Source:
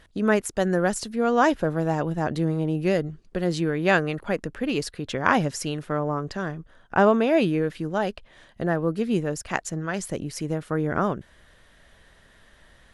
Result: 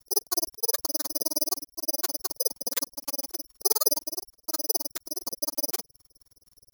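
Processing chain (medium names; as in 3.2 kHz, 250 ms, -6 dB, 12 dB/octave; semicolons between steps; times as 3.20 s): granulator 65 ms, grains 10 per s, spray 24 ms, pitch spread up and down by 0 st; LFO low-pass square 2.1 Hz 280–4200 Hz; wide varispeed 1.92×; distance through air 490 m; careless resampling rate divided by 8×, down filtered, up zero stuff; trim -7.5 dB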